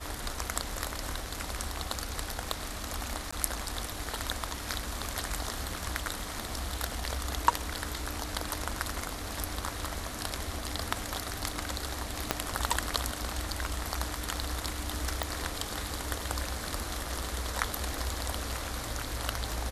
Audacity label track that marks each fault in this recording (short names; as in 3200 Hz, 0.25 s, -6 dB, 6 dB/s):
3.310000	3.330000	gap 15 ms
12.310000	12.310000	pop -8 dBFS
15.230000	15.230000	pop